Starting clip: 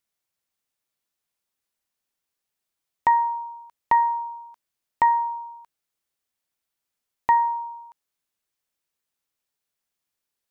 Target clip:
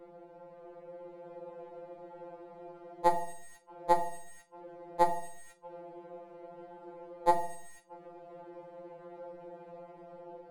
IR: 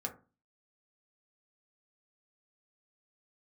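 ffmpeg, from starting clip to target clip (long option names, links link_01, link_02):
-filter_complex "[0:a]aeval=exprs='val(0)+0.5*0.0141*sgn(val(0))':channel_layout=same,acrossover=split=210[link_01][link_02];[link_02]dynaudnorm=framelen=420:gausssize=5:maxgain=4.5dB[link_03];[link_01][link_03]amix=inputs=2:normalize=0,lowpass=frequency=540:width_type=q:width=4.9,asplit=2[link_04][link_05];[link_05]acrusher=bits=3:dc=4:mix=0:aa=0.000001,volume=-11dB[link_06];[link_04][link_06]amix=inputs=2:normalize=0[link_07];[1:a]atrim=start_sample=2205,asetrate=22932,aresample=44100[link_08];[link_07][link_08]afir=irnorm=-1:irlink=0,afftfilt=real='re*2.83*eq(mod(b,8),0)':imag='im*2.83*eq(mod(b,8),0)':win_size=2048:overlap=0.75"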